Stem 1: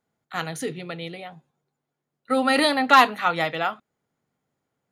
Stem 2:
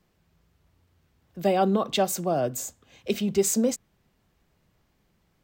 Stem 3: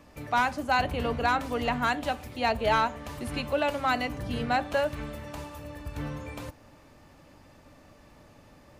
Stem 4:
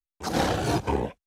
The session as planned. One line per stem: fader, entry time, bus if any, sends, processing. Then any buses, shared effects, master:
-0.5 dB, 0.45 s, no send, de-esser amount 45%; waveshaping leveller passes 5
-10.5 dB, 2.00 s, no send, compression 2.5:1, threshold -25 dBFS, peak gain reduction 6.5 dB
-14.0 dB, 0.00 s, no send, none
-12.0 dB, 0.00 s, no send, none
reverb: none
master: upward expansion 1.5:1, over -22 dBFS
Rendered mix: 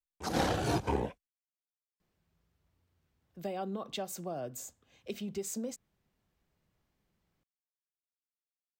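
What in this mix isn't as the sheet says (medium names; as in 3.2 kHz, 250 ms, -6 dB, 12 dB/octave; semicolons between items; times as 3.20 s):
stem 1: muted; stem 3: muted; stem 4 -12.0 dB -> -5.5 dB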